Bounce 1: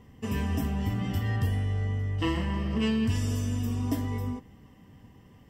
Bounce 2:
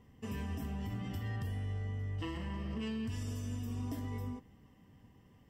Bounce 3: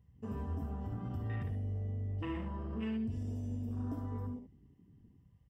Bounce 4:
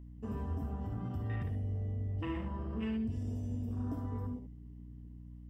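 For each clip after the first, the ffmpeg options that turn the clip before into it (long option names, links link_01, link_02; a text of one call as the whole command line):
ffmpeg -i in.wav -af "alimiter=limit=-23dB:level=0:latency=1:release=68,volume=-8dB" out.wav
ffmpeg -i in.wav -filter_complex "[0:a]afwtdn=0.00398,asplit=2[link_01][link_02];[link_02]aecho=0:1:58|73:0.299|0.335[link_03];[link_01][link_03]amix=inputs=2:normalize=0" out.wav
ffmpeg -i in.wav -af "aeval=exprs='val(0)+0.00355*(sin(2*PI*60*n/s)+sin(2*PI*2*60*n/s)/2+sin(2*PI*3*60*n/s)/3+sin(2*PI*4*60*n/s)/4+sin(2*PI*5*60*n/s)/5)':channel_layout=same,volume=1dB" out.wav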